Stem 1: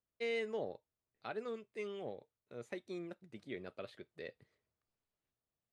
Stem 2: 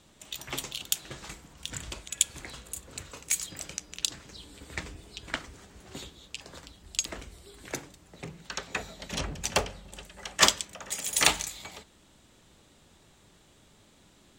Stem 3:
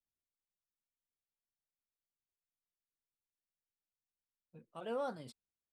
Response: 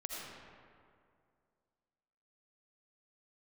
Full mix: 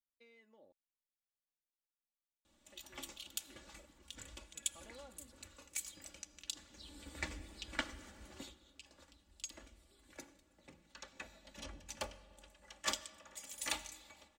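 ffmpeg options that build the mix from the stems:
-filter_complex "[0:a]acompressor=threshold=-42dB:ratio=4,volume=-19.5dB,asplit=3[link_01][link_02][link_03];[link_01]atrim=end=0.72,asetpts=PTS-STARTPTS,afade=type=out:start_time=0.716:duration=0.004:curve=hsin[link_04];[link_02]atrim=start=0.72:end=2.67,asetpts=PTS-STARTPTS,volume=0[link_05];[link_03]atrim=start=2.67,asetpts=PTS-STARTPTS,afade=type=in:duration=0.004:curve=hsin[link_06];[link_04][link_05][link_06]concat=n=3:v=0:a=1[link_07];[1:a]adelay=2450,volume=-7.5dB,afade=type=in:start_time=6.67:duration=0.32:silence=0.375837,afade=type=out:start_time=8.31:duration=0.24:silence=0.266073,asplit=2[link_08][link_09];[link_09]volume=-15dB[link_10];[2:a]acompressor=threshold=-47dB:ratio=6,volume=-9.5dB[link_11];[3:a]atrim=start_sample=2205[link_12];[link_10][link_12]afir=irnorm=-1:irlink=0[link_13];[link_07][link_08][link_11][link_13]amix=inputs=4:normalize=0,aecho=1:1:3.5:0.68"

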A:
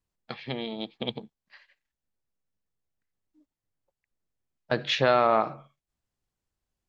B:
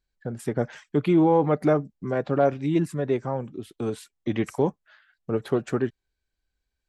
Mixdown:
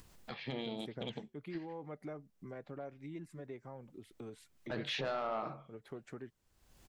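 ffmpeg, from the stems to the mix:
ffmpeg -i stem1.wav -i stem2.wav -filter_complex "[0:a]flanger=delay=0.6:depth=6.2:regen=-82:speed=1.1:shape=sinusoidal,volume=-1dB,asplit=2[link_01][link_02];[1:a]equalizer=frequency=2100:width_type=o:width=0.27:gain=7,adelay=400,volume=-20dB[link_03];[link_02]apad=whole_len=321142[link_04];[link_03][link_04]sidechaingate=range=-9dB:threshold=-56dB:ratio=16:detection=peak[link_05];[link_01][link_05]amix=inputs=2:normalize=0,acompressor=mode=upward:threshold=-37dB:ratio=2.5,asoftclip=type=tanh:threshold=-19.5dB,alimiter=level_in=5.5dB:limit=-24dB:level=0:latency=1:release=19,volume=-5.5dB" out.wav

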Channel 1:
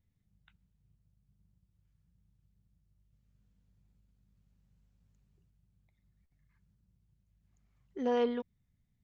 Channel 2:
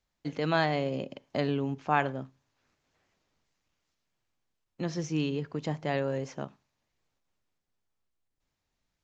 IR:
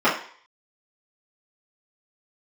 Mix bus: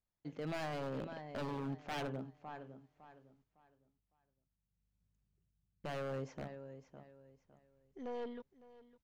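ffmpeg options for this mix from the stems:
-filter_complex "[0:a]aeval=exprs='(tanh(28.2*val(0)+0.45)-tanh(0.45))/28.2':channel_layout=same,volume=-14dB,afade=type=in:start_time=4.69:duration=0.33:silence=0.421697,asplit=2[link_01][link_02];[link_02]volume=-18.5dB[link_03];[1:a]asoftclip=type=tanh:threshold=-19.5dB,highshelf=frequency=2300:gain=-8.5,volume=-11dB,asplit=3[link_04][link_05][link_06];[link_04]atrim=end=3.44,asetpts=PTS-STARTPTS,afade=type=out:start_time=3.436:duration=0.004:curve=hsin[link_07];[link_05]atrim=start=3.44:end=5.84,asetpts=PTS-STARTPTS,volume=0[link_08];[link_06]atrim=start=5.84,asetpts=PTS-STARTPTS,afade=type=in:duration=0.004:curve=hsin[link_09];[link_07][link_08][link_09]concat=n=3:v=0:a=1,asplit=2[link_10][link_11];[link_11]volume=-12.5dB[link_12];[link_03][link_12]amix=inputs=2:normalize=0,aecho=0:1:557|1114|1671|2228:1|0.28|0.0784|0.022[link_13];[link_01][link_10][link_13]amix=inputs=3:normalize=0,dynaudnorm=framelen=100:gausssize=11:maxgain=5dB,aeval=exprs='0.02*(abs(mod(val(0)/0.02+3,4)-2)-1)':channel_layout=same"

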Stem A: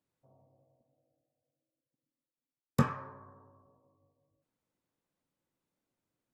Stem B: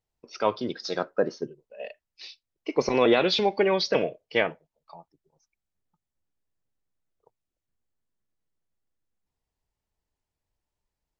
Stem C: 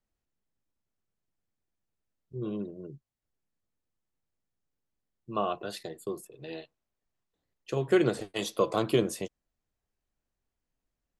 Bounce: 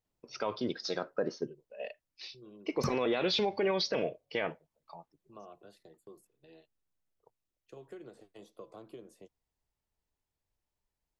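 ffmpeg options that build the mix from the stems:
ffmpeg -i stem1.wav -i stem2.wav -i stem3.wav -filter_complex "[0:a]aphaser=in_gain=1:out_gain=1:delay=1.7:decay=0.54:speed=0.8:type=sinusoidal,adelay=50,volume=-6.5dB[link_01];[1:a]volume=-3dB[link_02];[2:a]agate=range=-12dB:threshold=-46dB:ratio=16:detection=peak,acrossover=split=240|1000[link_03][link_04][link_05];[link_03]acompressor=threshold=-46dB:ratio=4[link_06];[link_04]acompressor=threshold=-30dB:ratio=4[link_07];[link_05]acompressor=threshold=-48dB:ratio=4[link_08];[link_06][link_07][link_08]amix=inputs=3:normalize=0,volume=-16.5dB[link_09];[link_01][link_02][link_09]amix=inputs=3:normalize=0,alimiter=limit=-21.5dB:level=0:latency=1:release=40" out.wav

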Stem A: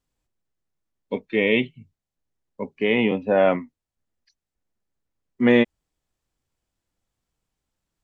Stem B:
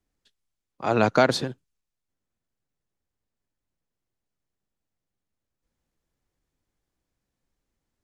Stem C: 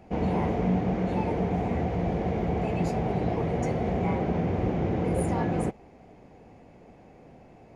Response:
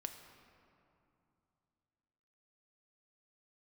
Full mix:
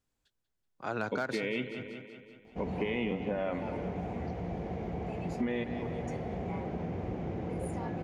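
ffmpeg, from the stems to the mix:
-filter_complex "[0:a]alimiter=limit=-14.5dB:level=0:latency=1,volume=-5.5dB,asplit=3[link_01][link_02][link_03];[link_02]volume=-6.5dB[link_04];[link_03]volume=-11.5dB[link_05];[1:a]equalizer=frequency=1500:width_type=o:width=0.24:gain=9.5,asoftclip=type=hard:threshold=-7dB,volume=-10.5dB,asplit=2[link_06][link_07];[link_07]volume=-17.5dB[link_08];[2:a]adelay=2450,volume=-9dB[link_09];[3:a]atrim=start_sample=2205[link_10];[link_04][link_10]afir=irnorm=-1:irlink=0[link_11];[link_05][link_08]amix=inputs=2:normalize=0,aecho=0:1:189|378|567|756|945|1134|1323|1512:1|0.56|0.314|0.176|0.0983|0.0551|0.0308|0.0173[link_12];[link_01][link_06][link_09][link_11][link_12]amix=inputs=5:normalize=0,acompressor=threshold=-30dB:ratio=4"

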